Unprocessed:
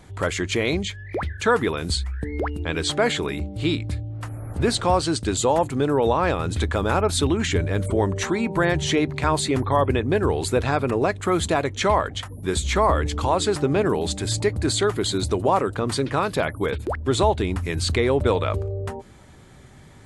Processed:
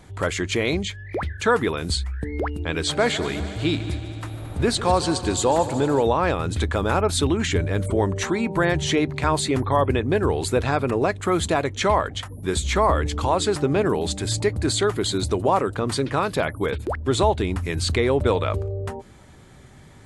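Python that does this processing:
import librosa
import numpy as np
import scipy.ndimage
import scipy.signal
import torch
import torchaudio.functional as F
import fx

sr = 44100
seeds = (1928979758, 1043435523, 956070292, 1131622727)

y = fx.echo_heads(x, sr, ms=74, heads='second and third', feedback_pct=68, wet_db=-15.5, at=(2.86, 6.02), fade=0.02)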